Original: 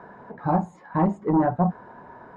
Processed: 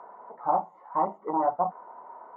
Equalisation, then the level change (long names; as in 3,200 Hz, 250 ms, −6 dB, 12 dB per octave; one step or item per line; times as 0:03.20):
Savitzky-Golay smoothing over 65 samples
high-pass filter 840 Hz 12 dB per octave
high-frequency loss of the air 84 metres
+5.0 dB